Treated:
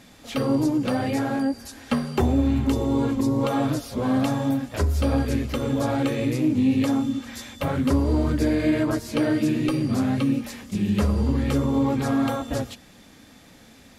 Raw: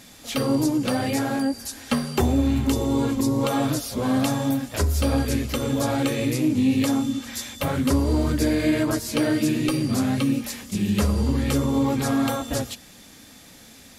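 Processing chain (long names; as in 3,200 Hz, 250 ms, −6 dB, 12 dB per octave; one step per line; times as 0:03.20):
high-shelf EQ 3,900 Hz −10.5 dB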